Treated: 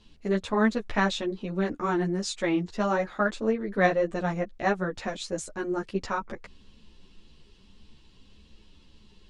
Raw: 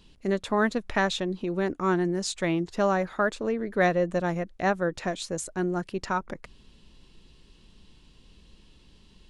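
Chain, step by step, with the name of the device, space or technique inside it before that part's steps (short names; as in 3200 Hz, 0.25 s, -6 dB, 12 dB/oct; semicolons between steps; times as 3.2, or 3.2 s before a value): string-machine ensemble chorus (ensemble effect; LPF 7900 Hz 12 dB/oct); gain +2.5 dB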